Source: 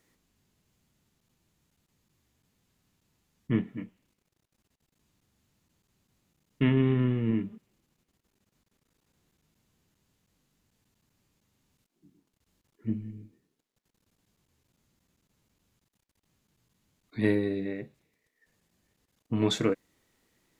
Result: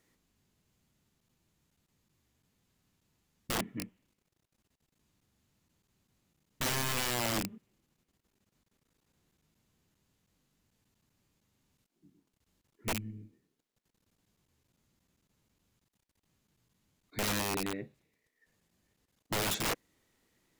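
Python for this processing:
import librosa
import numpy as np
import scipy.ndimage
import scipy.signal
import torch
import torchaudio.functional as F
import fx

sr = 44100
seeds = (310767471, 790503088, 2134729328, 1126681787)

y = fx.rattle_buzz(x, sr, strikes_db=-34.0, level_db=-17.0)
y = (np.mod(10.0 ** (24.0 / 20.0) * y + 1.0, 2.0) - 1.0) / 10.0 ** (24.0 / 20.0)
y = y * 10.0 ** (-2.5 / 20.0)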